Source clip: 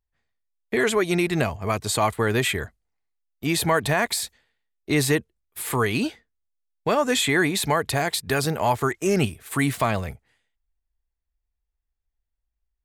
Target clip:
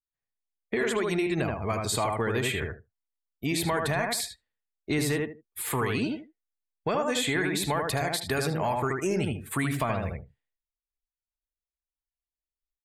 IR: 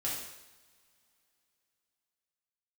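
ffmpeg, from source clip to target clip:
-filter_complex "[0:a]asoftclip=type=tanh:threshold=-10dB,asplit=2[a][b];[b]adelay=77,lowpass=f=2.4k:p=1,volume=-3dB,asplit=2[c][d];[d]adelay=77,lowpass=f=2.4k:p=1,volume=0.21,asplit=2[e][f];[f]adelay=77,lowpass=f=2.4k:p=1,volume=0.21[g];[a][c][e][g]amix=inputs=4:normalize=0,acompressor=threshold=-23dB:ratio=3,afftdn=nr=19:nf=-46,volume=-2dB"

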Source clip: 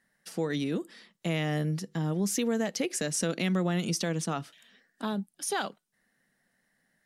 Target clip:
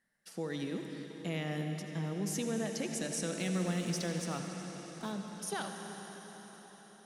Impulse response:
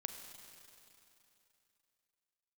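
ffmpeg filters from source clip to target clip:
-filter_complex "[0:a]asettb=1/sr,asplit=3[a][b][c];[a]atrim=end=3.374[d];[b]atrim=start=3.37:end=5.12,asetpts=PTS-STARTPTS,afade=t=in:d=0.004:c=qsin,afade=t=out:st=1.746:d=0.004:c=qsin,acrusher=bits=6:mix=0:aa=0.5[e];[c]atrim=start=5.116[f];[d][e]acrossfade=d=0.004:c1=hsin:c2=qsin[g];[g][f]acrossfade=d=0.004:c1=qsin:c2=hsin[h];[1:a]atrim=start_sample=2205,asetrate=23373,aresample=44100[i];[h][i]afir=irnorm=-1:irlink=0,volume=-8dB"

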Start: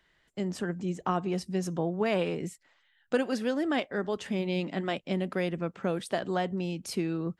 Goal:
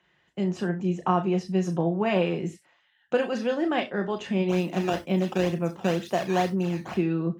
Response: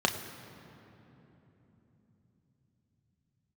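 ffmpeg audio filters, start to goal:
-filter_complex "[0:a]asplit=3[a][b][c];[a]afade=t=out:st=4.48:d=0.02[d];[b]acrusher=samples=12:mix=1:aa=0.000001:lfo=1:lforange=19.2:lforate=2.1,afade=t=in:st=4.48:d=0.02,afade=t=out:st=6.94:d=0.02[e];[c]afade=t=in:st=6.94:d=0.02[f];[d][e][f]amix=inputs=3:normalize=0[g];[1:a]atrim=start_sample=2205,atrim=end_sample=3969,asetrate=40572,aresample=44100[h];[g][h]afir=irnorm=-1:irlink=0,volume=-8dB"

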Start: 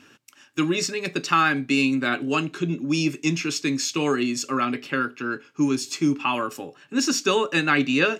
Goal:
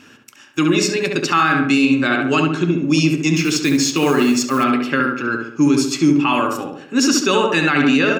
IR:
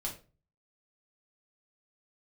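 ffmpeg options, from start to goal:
-filter_complex "[0:a]asettb=1/sr,asplit=3[a][b][c];[a]atrim=end=1.864[d];[b]atrim=start=1.86:end=2.84,asetpts=PTS-STARTPTS,afade=t=in:d=0.004:c=qsin,afade=t=out:st=0.976:d=0.004:c=qsin,lowpass=8.5k[e];[c]atrim=start=2.836[f];[d][e]acrossfade=d=0.004:c1=hsin:c2=qsin[g];[g][f]acrossfade=d=0.004:c1=qsin:c2=hsin,asettb=1/sr,asplit=3[h][i][j];[h]atrim=end=3.364[k];[i]atrim=start=3.36:end=4.64,asetpts=PTS-STARTPTS,afade=t=in:d=0.004:c=qsin,afade=t=out:st=1.276:d=0.004:c=qsin,acrusher=bits=5:mode=log:mix=0:aa=0.000001[l];[j]atrim=start=4.636[m];[k][l]acrossfade=d=0.004:c1=hsin:c2=qsin[n];[n][m]acrossfade=d=0.004:c1=qsin:c2=hsin,asplit=2[o][p];[p]adelay=69,lowpass=f=2k:p=1,volume=-3dB,asplit=2[q][r];[r]adelay=69,lowpass=f=2k:p=1,volume=0.51,asplit=2[s][t];[t]adelay=69,lowpass=f=2k:p=1,volume=0.51,asplit=2[u][v];[v]adelay=69,lowpass=f=2k:p=1,volume=0.51,asplit=2[w][x];[x]adelay=69,lowpass=f=2k:p=1,volume=0.51,asplit=2[y][z];[z]adelay=69,lowpass=f=2k:p=1,volume=0.51,asplit=2[aa][ab];[ab]adelay=69,lowpass=f=2k:p=1,volume=0.51[ac];[q][s][u][w][y][aa][ac]amix=inputs=7:normalize=0[ad];[o][ad]amix=inputs=2:normalize=0,alimiter=level_in=11dB:limit=-1dB:release=50:level=0:latency=1,volume=-4.5dB"

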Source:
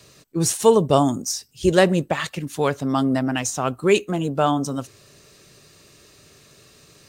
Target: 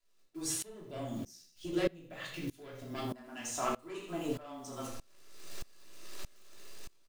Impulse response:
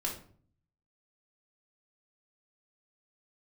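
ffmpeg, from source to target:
-filter_complex "[0:a]afreqshift=-15,acrusher=bits=8:dc=4:mix=0:aa=0.000001,dynaudnorm=f=230:g=5:m=14dB,asoftclip=type=tanh:threshold=-11dB,asettb=1/sr,asplit=3[a][b][c];[a]atrim=end=0.564[d];[b]atrim=start=0.56:end=3.05,asetpts=PTS-STARTPTS,afade=t=in:d=0.004:c=qsin,afade=t=out:st=2.486:d=0.004:c=qsin,equalizer=f=125:t=o:w=1:g=5,equalizer=f=1k:t=o:w=1:g=-10,equalizer=f=8k:t=o:w=1:g=-6[e];[c]atrim=start=3.046[f];[d][e]acrossfade=d=0.004:c1=hsin:c2=qsin[g];[g][f]acrossfade=d=0.004:c1=qsin:c2=hsin,aecho=1:1:81|162|243|324:0.237|0.083|0.029|0.0102,acompressor=threshold=-19dB:ratio=6,equalizer=f=86:t=o:w=2.4:g=-14.5[h];[1:a]atrim=start_sample=2205,afade=t=out:st=0.18:d=0.01,atrim=end_sample=8379[i];[h][i]afir=irnorm=-1:irlink=0,aeval=exprs='val(0)*pow(10,-24*if(lt(mod(-1.6*n/s,1),2*abs(-1.6)/1000),1-mod(-1.6*n/s,1)/(2*abs(-1.6)/1000),(mod(-1.6*n/s,1)-2*abs(-1.6)/1000)/(1-2*abs(-1.6)/1000))/20)':c=same,volume=-7.5dB"

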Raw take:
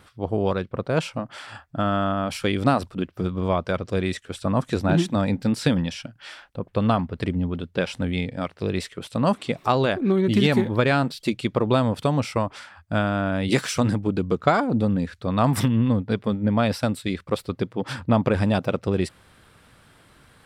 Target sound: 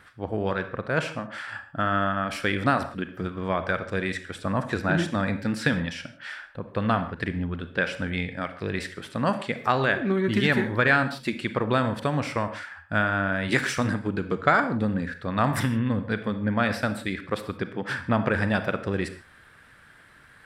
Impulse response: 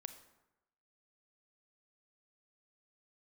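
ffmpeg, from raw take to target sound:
-filter_complex "[0:a]equalizer=f=1.7k:t=o:w=0.77:g=13[a];[1:a]atrim=start_sample=2205,afade=t=out:st=0.22:d=0.01,atrim=end_sample=10143[b];[a][b]afir=irnorm=-1:irlink=0"

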